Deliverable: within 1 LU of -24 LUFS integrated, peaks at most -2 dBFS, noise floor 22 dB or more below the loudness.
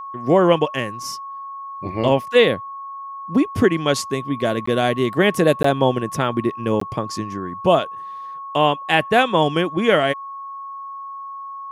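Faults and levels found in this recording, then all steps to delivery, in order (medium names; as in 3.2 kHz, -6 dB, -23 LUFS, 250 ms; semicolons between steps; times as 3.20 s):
dropouts 3; longest dropout 14 ms; steady tone 1.1 kHz; tone level -30 dBFS; loudness -19.5 LUFS; peak level -2.0 dBFS; loudness target -24.0 LUFS
-> interpolate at 4.66/5.63/6.80 s, 14 ms; band-stop 1.1 kHz, Q 30; trim -4.5 dB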